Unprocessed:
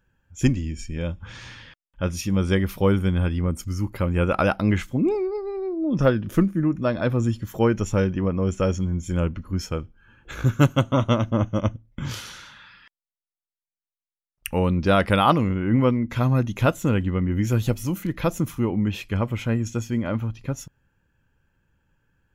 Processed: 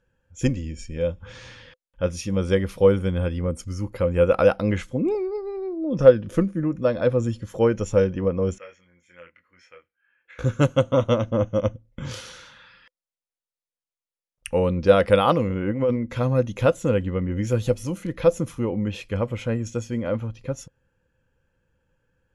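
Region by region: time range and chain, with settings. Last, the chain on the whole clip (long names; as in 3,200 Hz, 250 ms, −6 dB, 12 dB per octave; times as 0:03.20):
0:08.58–0:10.39: resonant band-pass 2,000 Hz, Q 5.4 + double-tracking delay 23 ms −5 dB
0:15.53–0:15.96: Butterworth low-pass 11,000 Hz + low-shelf EQ 71 Hz −5 dB + compressor whose output falls as the input rises −21 dBFS, ratio −0.5
whole clip: elliptic low-pass filter 11,000 Hz, stop band 40 dB; parametric band 510 Hz +14.5 dB 0.24 octaves; level −2 dB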